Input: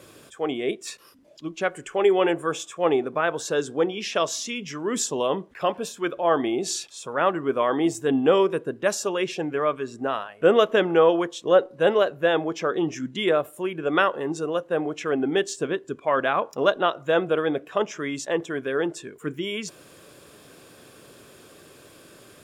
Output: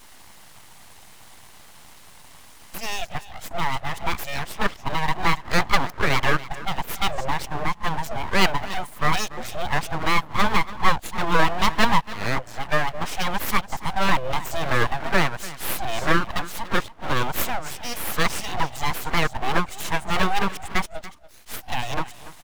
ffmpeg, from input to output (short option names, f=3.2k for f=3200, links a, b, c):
-filter_complex "[0:a]areverse,highpass=f=300:w=0.5412,highpass=f=300:w=1.3066,acrossover=split=480|2000[a][b][c];[a]alimiter=level_in=1.5dB:limit=-24dB:level=0:latency=1,volume=-1.5dB[d];[c]acrusher=bits=3:mode=log:mix=0:aa=0.000001[e];[d][b][e]amix=inputs=3:normalize=0,aecho=1:1:287:0.15,aeval=exprs='abs(val(0))':c=same,volume=5dB"